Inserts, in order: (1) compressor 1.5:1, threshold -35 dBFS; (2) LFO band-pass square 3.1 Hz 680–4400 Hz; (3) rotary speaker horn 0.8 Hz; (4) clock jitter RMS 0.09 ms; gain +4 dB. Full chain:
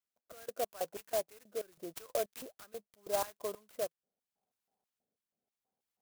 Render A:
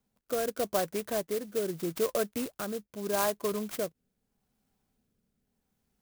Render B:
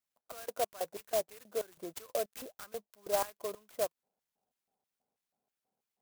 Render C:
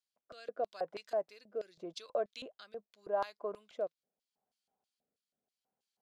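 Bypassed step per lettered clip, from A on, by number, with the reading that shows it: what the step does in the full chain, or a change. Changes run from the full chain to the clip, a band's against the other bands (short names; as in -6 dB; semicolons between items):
2, 125 Hz band +10.0 dB; 3, loudness change +1.5 LU; 4, 4 kHz band -2.0 dB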